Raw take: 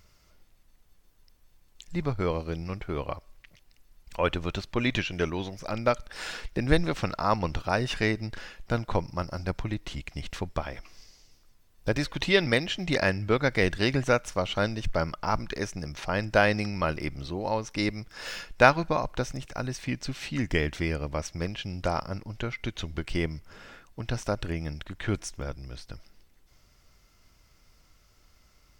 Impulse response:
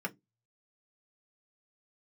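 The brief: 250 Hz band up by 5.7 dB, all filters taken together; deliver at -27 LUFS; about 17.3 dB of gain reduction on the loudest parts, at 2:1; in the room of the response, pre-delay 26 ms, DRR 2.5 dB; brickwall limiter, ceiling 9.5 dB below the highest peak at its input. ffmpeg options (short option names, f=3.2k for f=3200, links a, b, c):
-filter_complex "[0:a]equalizer=f=250:t=o:g=7.5,acompressor=threshold=-44dB:ratio=2,alimiter=level_in=4dB:limit=-24dB:level=0:latency=1,volume=-4dB,asplit=2[a][b];[1:a]atrim=start_sample=2205,adelay=26[c];[b][c]afir=irnorm=-1:irlink=0,volume=-6dB[d];[a][d]amix=inputs=2:normalize=0,volume=12dB"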